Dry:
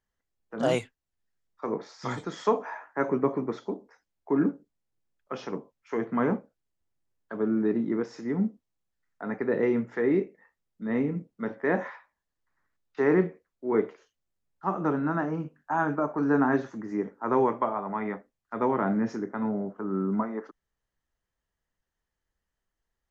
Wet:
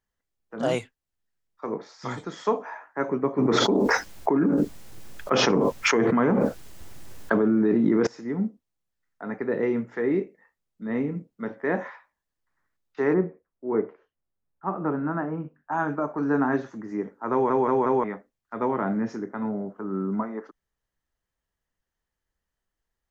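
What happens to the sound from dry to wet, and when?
3.38–8.07 s: level flattener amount 100%
13.13–15.71 s: low-pass 1.2 kHz -> 2.3 kHz
17.32 s: stutter in place 0.18 s, 4 plays

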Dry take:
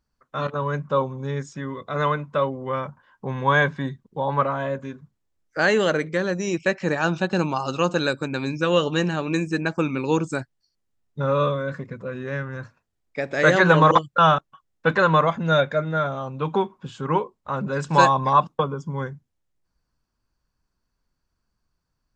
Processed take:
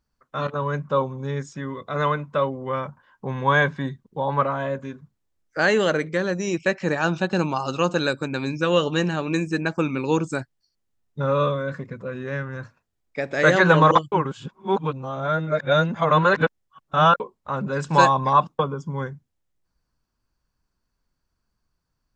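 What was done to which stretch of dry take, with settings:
14.12–17.20 s: reverse

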